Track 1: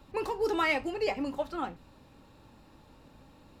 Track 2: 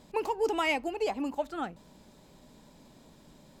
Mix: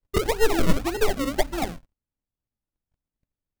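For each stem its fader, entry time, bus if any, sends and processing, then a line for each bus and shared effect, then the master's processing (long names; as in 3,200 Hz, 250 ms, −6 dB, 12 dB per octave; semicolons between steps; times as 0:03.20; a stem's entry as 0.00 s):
0.0 dB, 0.00 s, no send, wavefolder on the positive side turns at −27.5 dBFS; spectral tilt −4 dB per octave; mains-hum notches 50/100/150/200/250/300 Hz
+1.5 dB, 0.00 s, no send, Butterworth high-pass 350 Hz 48 dB per octave; high-shelf EQ 4,700 Hz +9.5 dB; transient designer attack +7 dB, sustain −11 dB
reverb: not used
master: noise gate −34 dBFS, range −46 dB; sample-and-hold swept by an LFO 37×, swing 100% 1.8 Hz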